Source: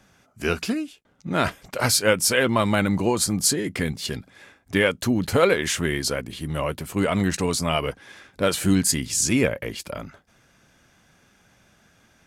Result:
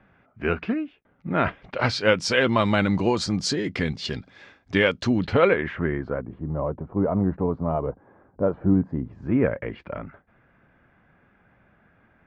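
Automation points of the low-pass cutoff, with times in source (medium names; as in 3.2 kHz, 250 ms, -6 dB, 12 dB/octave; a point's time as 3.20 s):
low-pass 24 dB/octave
1.35 s 2.4 kHz
2.26 s 5.3 kHz
5.09 s 5.3 kHz
5.65 s 2 kHz
6.55 s 1 kHz
9.03 s 1 kHz
9.64 s 2.1 kHz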